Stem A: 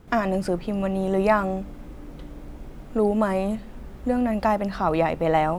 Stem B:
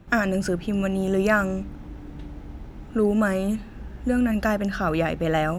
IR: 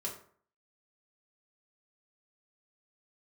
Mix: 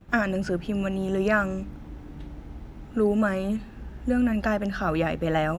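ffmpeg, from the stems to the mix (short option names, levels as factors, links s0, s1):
-filter_complex "[0:a]volume=0.133[s0];[1:a]acrossover=split=5500[s1][s2];[s2]acompressor=threshold=0.00224:ratio=4:attack=1:release=60[s3];[s1][s3]amix=inputs=2:normalize=0,volume=-1,adelay=10,volume=0.794[s4];[s0][s4]amix=inputs=2:normalize=0"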